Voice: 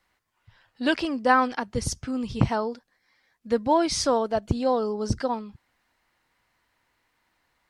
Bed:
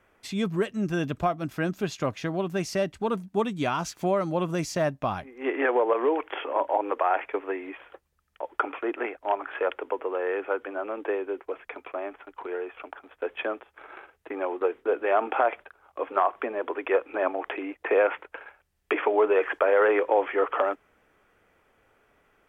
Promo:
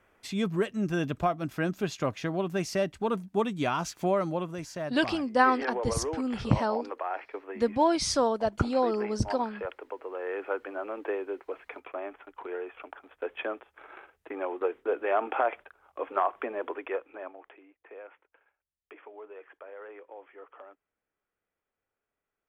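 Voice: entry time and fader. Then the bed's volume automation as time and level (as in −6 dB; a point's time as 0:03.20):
4.10 s, −2.5 dB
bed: 0:04.27 −1.5 dB
0:04.55 −9.5 dB
0:10.01 −9.5 dB
0:10.48 −3.5 dB
0:16.67 −3.5 dB
0:17.70 −24.5 dB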